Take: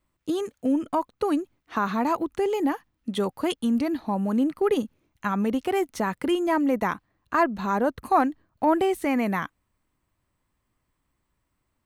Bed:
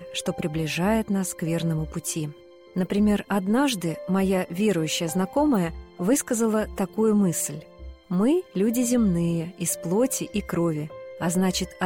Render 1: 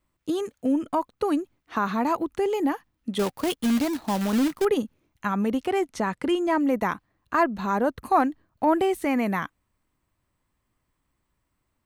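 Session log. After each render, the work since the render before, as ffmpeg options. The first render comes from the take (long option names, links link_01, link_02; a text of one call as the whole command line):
ffmpeg -i in.wav -filter_complex "[0:a]asettb=1/sr,asplit=3[link_01][link_02][link_03];[link_01]atrim=end=3.194[link_04];[link_02]atrim=start=3.19:end=4.65,asetpts=PTS-STARTPTS,afade=type=in:duration=0.004:curve=qsin,afade=type=out:start_time=1.456:duration=0.004:curve=qsin,acrusher=bits=2:mode=log:mix=0:aa=0.000001[link_05];[link_03]atrim=start=4.646[link_06];[link_04][link_05]acrossfade=duration=0.004:curve1=hsin:curve2=qsin[link_07];[link_07][link_06]acrossfade=duration=0.004:curve1=qsin:curve2=hsin,asettb=1/sr,asplit=3[link_08][link_09][link_10];[link_08]atrim=end=5.664[link_11];[link_09]atrim=start=5.66:end=6.61,asetpts=PTS-STARTPTS,afade=type=in:duration=0.004:curve=qsin,afade=type=out:start_time=0.946:duration=0.004:curve=qsin,lowpass=9300[link_12];[link_10]atrim=start=6.606[link_13];[link_11][link_12]acrossfade=duration=0.004:curve1=hsin:curve2=qsin[link_14];[link_14][link_13]acrossfade=duration=0.004:curve1=qsin:curve2=hsin" out.wav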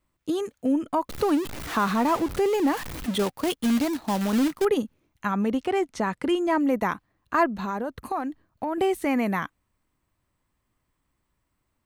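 ffmpeg -i in.wav -filter_complex "[0:a]asettb=1/sr,asplit=3[link_01][link_02][link_03];[link_01]atrim=end=1.094[link_04];[link_02]atrim=start=1.09:end=3.18,asetpts=PTS-STARTPTS,afade=type=in:duration=0.004:curve=qsin,afade=type=out:start_time=2.086:duration=0.004:curve=qsin,aeval=exprs='val(0)+0.5*0.0355*sgn(val(0))':channel_layout=same[link_05];[link_03]atrim=start=3.176[link_06];[link_04][link_05]acrossfade=duration=0.004:curve1=hsin:curve2=qsin[link_07];[link_07][link_06]acrossfade=duration=0.004:curve1=qsin:curve2=hsin,asettb=1/sr,asplit=3[link_08][link_09][link_10];[link_08]atrim=end=5.314[link_11];[link_09]atrim=start=5.31:end=6,asetpts=PTS-STARTPTS,afade=type=in:duration=0.004:curve=qsin,afade=type=out:start_time=0.686:duration=0.004:curve=qsin,equalizer=frequency=12000:width=1.2:gain=-6[link_12];[link_10]atrim=start=5.996[link_13];[link_11][link_12]acrossfade=duration=0.004:curve1=hsin:curve2=qsin[link_14];[link_14][link_13]acrossfade=duration=0.004:curve1=qsin:curve2=hsin,asettb=1/sr,asplit=3[link_15][link_16][link_17];[link_15]atrim=end=7.494[link_18];[link_16]atrim=start=7.49:end=8.78,asetpts=PTS-STARTPTS,afade=type=in:duration=0.004:curve=qsin,afade=type=out:start_time=1.286:duration=0.004:curve=qsin,acompressor=threshold=-25dB:ratio=6:attack=3.2:release=140:knee=1:detection=peak[link_19];[link_17]atrim=start=8.776[link_20];[link_18][link_19]acrossfade=duration=0.004:curve1=hsin:curve2=qsin[link_21];[link_21][link_20]acrossfade=duration=0.004:curve1=qsin:curve2=hsin" out.wav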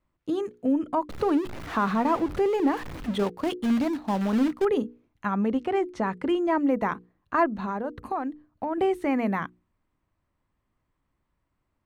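ffmpeg -i in.wav -af "lowpass=frequency=1900:poles=1,bandreject=frequency=60:width_type=h:width=6,bandreject=frequency=120:width_type=h:width=6,bandreject=frequency=180:width_type=h:width=6,bandreject=frequency=240:width_type=h:width=6,bandreject=frequency=300:width_type=h:width=6,bandreject=frequency=360:width_type=h:width=6,bandreject=frequency=420:width_type=h:width=6,bandreject=frequency=480:width_type=h:width=6" out.wav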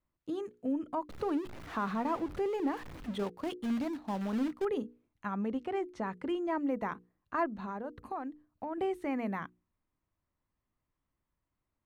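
ffmpeg -i in.wav -af "volume=-9dB" out.wav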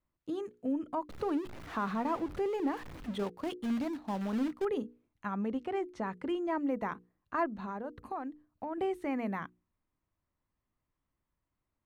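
ffmpeg -i in.wav -af anull out.wav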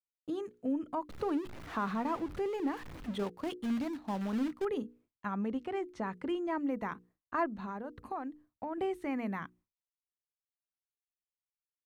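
ffmpeg -i in.wav -af "agate=range=-33dB:threshold=-57dB:ratio=3:detection=peak,adynamicequalizer=threshold=0.00631:dfrequency=600:dqfactor=0.96:tfrequency=600:tqfactor=0.96:attack=5:release=100:ratio=0.375:range=2.5:mode=cutabove:tftype=bell" out.wav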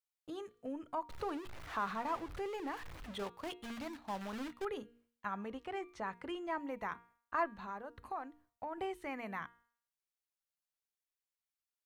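ffmpeg -i in.wav -af "equalizer=frequency=240:width=0.79:gain=-11.5,bandreject=frequency=235.2:width_type=h:width=4,bandreject=frequency=470.4:width_type=h:width=4,bandreject=frequency=705.6:width_type=h:width=4,bandreject=frequency=940.8:width_type=h:width=4,bandreject=frequency=1176:width_type=h:width=4,bandreject=frequency=1411.2:width_type=h:width=4,bandreject=frequency=1646.4:width_type=h:width=4,bandreject=frequency=1881.6:width_type=h:width=4,bandreject=frequency=2116.8:width_type=h:width=4,bandreject=frequency=2352:width_type=h:width=4,bandreject=frequency=2587.2:width_type=h:width=4,bandreject=frequency=2822.4:width_type=h:width=4,bandreject=frequency=3057.6:width_type=h:width=4,bandreject=frequency=3292.8:width_type=h:width=4,bandreject=frequency=3528:width_type=h:width=4,bandreject=frequency=3763.2:width_type=h:width=4,bandreject=frequency=3998.4:width_type=h:width=4,bandreject=frequency=4233.6:width_type=h:width=4" out.wav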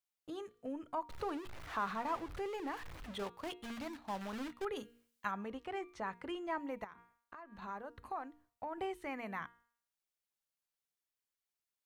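ffmpeg -i in.wav -filter_complex "[0:a]asplit=3[link_01][link_02][link_03];[link_01]afade=type=out:start_time=4.75:duration=0.02[link_04];[link_02]highshelf=frequency=2300:gain=10.5,afade=type=in:start_time=4.75:duration=0.02,afade=type=out:start_time=5.3:duration=0.02[link_05];[link_03]afade=type=in:start_time=5.3:duration=0.02[link_06];[link_04][link_05][link_06]amix=inputs=3:normalize=0,asettb=1/sr,asplit=3[link_07][link_08][link_09];[link_07]atrim=end=6.844[link_10];[link_08]atrim=start=6.84:end=7.62,asetpts=PTS-STARTPTS,afade=type=in:duration=0.004:curve=qsin,afade=type=out:start_time=0.776:duration=0.004:curve=qsin,acompressor=threshold=-47dB:ratio=20:attack=3.2:release=140:knee=1:detection=peak[link_11];[link_09]atrim=start=7.616[link_12];[link_10][link_11]acrossfade=duration=0.004:curve1=hsin:curve2=qsin[link_13];[link_13][link_12]acrossfade=duration=0.004:curve1=qsin:curve2=hsin" out.wav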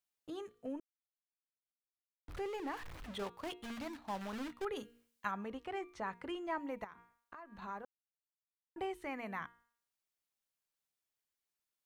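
ffmpeg -i in.wav -filter_complex "[0:a]asplit=5[link_01][link_02][link_03][link_04][link_05];[link_01]atrim=end=0.8,asetpts=PTS-STARTPTS,afade=type=out:start_time=0.796:duration=0.004:curve=hsin[link_06];[link_02]atrim=start=0.8:end=2.28,asetpts=PTS-STARTPTS,volume=0[link_07];[link_03]atrim=start=2.28:end=7.85,asetpts=PTS-STARTPTS,afade=type=in:duration=0.004:curve=hsin,afade=type=out:start_time=5.566:duration=0.004:curve=hsin[link_08];[link_04]atrim=start=7.85:end=8.76,asetpts=PTS-STARTPTS,volume=0[link_09];[link_05]atrim=start=8.76,asetpts=PTS-STARTPTS,afade=type=in:duration=0.004:curve=hsin[link_10];[link_06][link_07][link_08][link_09][link_10]concat=n=5:v=0:a=1" out.wav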